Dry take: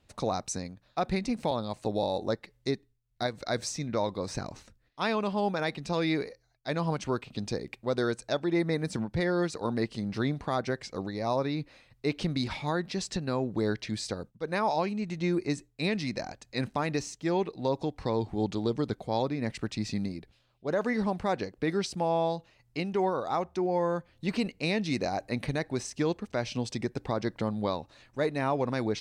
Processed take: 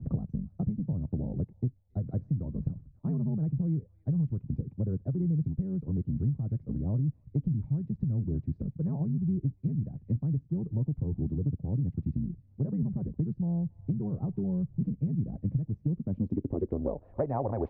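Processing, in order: granular stretch 0.61×, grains 20 ms; low-pass sweep 140 Hz -> 720 Hz, 15.81–17.19 s; on a send: feedback echo behind a high-pass 277 ms, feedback 36%, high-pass 1.5 kHz, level -19.5 dB; on the sum: three bands compressed up and down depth 100%; trim +2.5 dB

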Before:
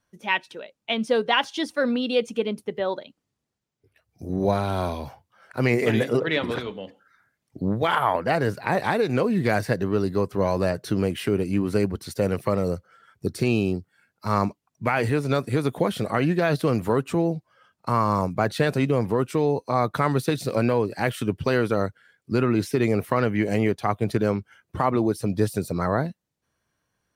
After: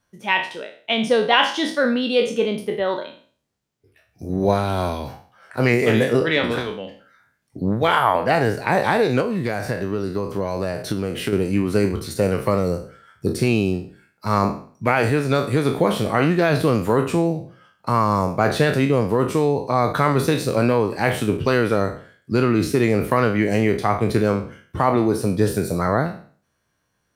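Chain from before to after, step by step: spectral sustain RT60 0.45 s; 9.20–11.33 s: compression, threshold -23 dBFS, peak gain reduction 8 dB; trim +3 dB

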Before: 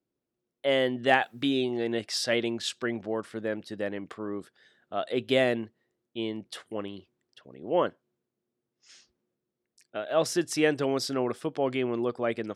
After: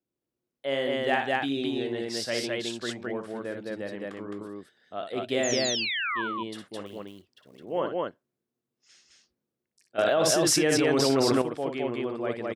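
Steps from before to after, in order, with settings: 5.43–6.22 s: painted sound fall 930–7300 Hz -28 dBFS; 6.86–7.59 s: short-mantissa float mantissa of 2-bit; loudspeakers at several distances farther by 20 m -7 dB, 73 m -1 dB; 9.98–11.42 s: level flattener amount 100%; trim -4.5 dB

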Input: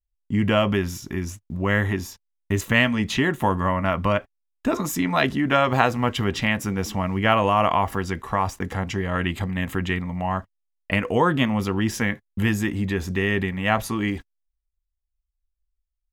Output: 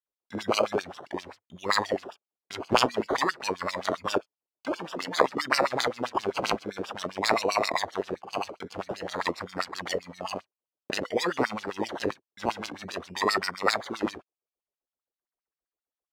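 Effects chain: high-order bell 3 kHz +11 dB; decimation with a swept rate 19×, swing 60% 0.5 Hz; LFO band-pass sine 7.6 Hz 360–5400 Hz

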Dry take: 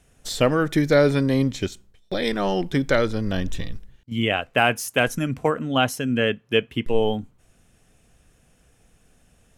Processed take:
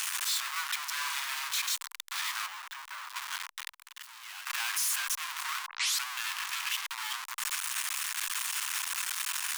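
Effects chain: one-bit comparator; 0.92–1.48 s: flutter echo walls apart 8.7 m, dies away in 0.66 s; 2.46–3.16 s: de-esser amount 55%; 3.72–4.47 s: expander -18 dBFS; 5.66 s: tape start 0.40 s; elliptic high-pass 1 kHz, stop band 50 dB; trim -5 dB

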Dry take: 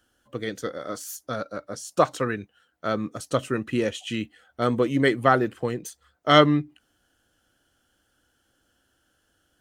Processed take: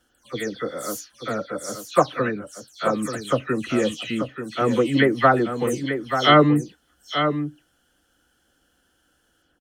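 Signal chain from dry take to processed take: delay that grows with frequency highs early, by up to 180 ms; delay 885 ms -8 dB; trim +3 dB

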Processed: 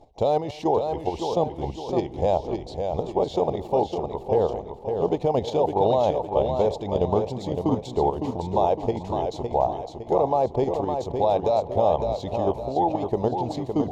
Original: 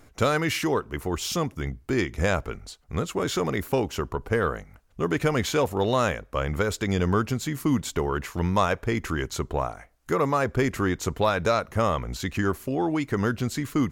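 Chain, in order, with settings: FFT filter 270 Hz 0 dB, 840 Hz +15 dB, 1.4 kHz -24 dB, 3.7 kHz 0 dB, 13 kHz -23 dB; reverse; upward compressor, threshold -28 dBFS; reverse; bucket-brigade echo 218 ms, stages 4096, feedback 41%, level -19 dB; level held to a coarse grid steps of 10 dB; modulated delay 559 ms, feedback 42%, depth 70 cents, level -6 dB

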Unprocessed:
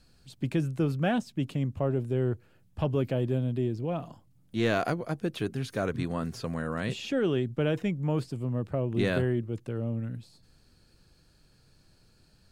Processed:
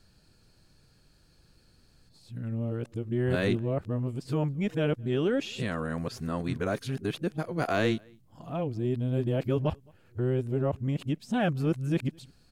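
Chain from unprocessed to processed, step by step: reverse the whole clip; echo from a far wall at 37 m, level -29 dB

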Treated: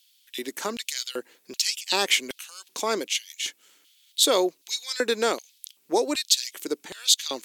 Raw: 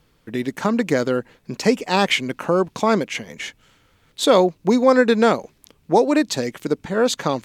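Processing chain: LFO high-pass square 1.3 Hz 340–3300 Hz; pre-emphasis filter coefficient 0.9; trim +6 dB

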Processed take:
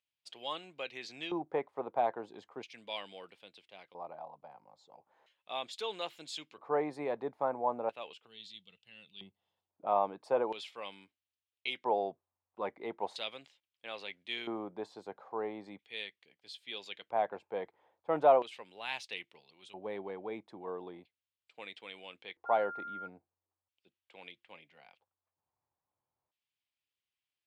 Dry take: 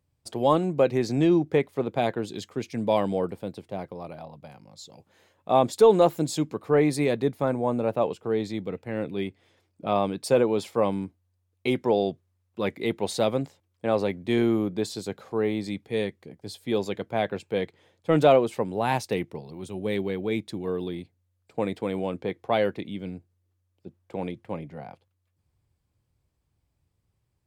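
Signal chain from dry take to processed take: 8.26–9.70 s: time-frequency box 230–2600 Hz -14 dB; 22.45–23.06 s: whistle 1.4 kHz -32 dBFS; LFO band-pass square 0.38 Hz 880–3000 Hz

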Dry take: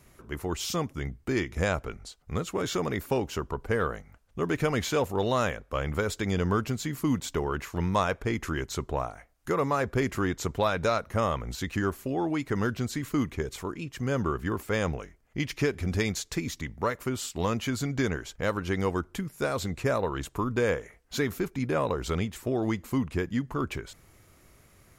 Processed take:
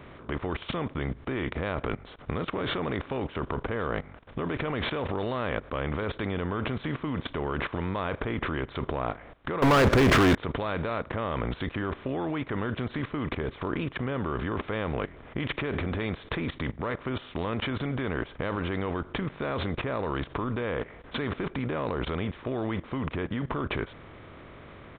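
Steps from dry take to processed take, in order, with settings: spectral levelling over time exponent 0.6; resampled via 8 kHz; level held to a coarse grid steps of 17 dB; 9.62–10.35 s: waveshaping leveller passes 5; trim +4 dB

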